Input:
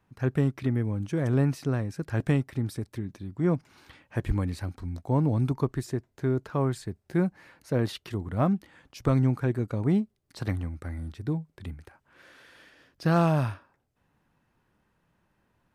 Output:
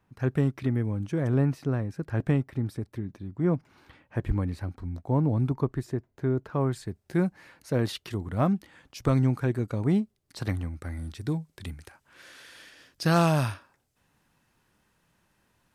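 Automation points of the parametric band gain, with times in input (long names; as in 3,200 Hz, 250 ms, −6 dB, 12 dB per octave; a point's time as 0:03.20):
parametric band 8,500 Hz 2.9 octaves
0:00.92 −1 dB
0:01.51 −8 dB
0:06.46 −8 dB
0:07.03 +3.5 dB
0:10.78 +3.5 dB
0:11.27 +11.5 dB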